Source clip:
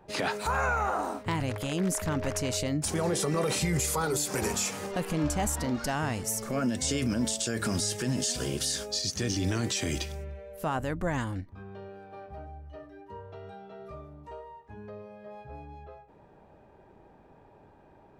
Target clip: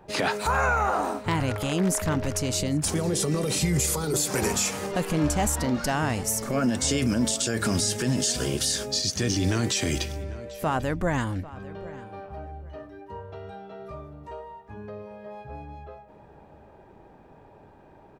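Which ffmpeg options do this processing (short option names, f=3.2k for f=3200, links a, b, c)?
-filter_complex "[0:a]asettb=1/sr,asplit=3[a][b][c];[a]atrim=end=2.144[d];[b]atrim=start=2.14:end=4.14,asetpts=PTS-STARTPTS,afade=t=in:d=0.004:c=qsin,afade=t=out:st=1.996:d=0.004:c=qsin,acrossover=split=430|3000[e][f][g];[f]acompressor=threshold=-40dB:ratio=6[h];[e][h][g]amix=inputs=3:normalize=0[i];[c]atrim=start=4.136[j];[d][i]acrossfade=d=0.004:c1=hsin:c2=qsin[k];[k][j]acrossfade=d=0.004:c1=qsin:c2=hsin,asplit=2[l][m];[m]adelay=795,lowpass=f=3.4k:p=1,volume=-17.5dB,asplit=2[n][o];[o]adelay=795,lowpass=f=3.4k:p=1,volume=0.26[p];[n][p]amix=inputs=2:normalize=0[q];[l][q]amix=inputs=2:normalize=0,volume=4.5dB"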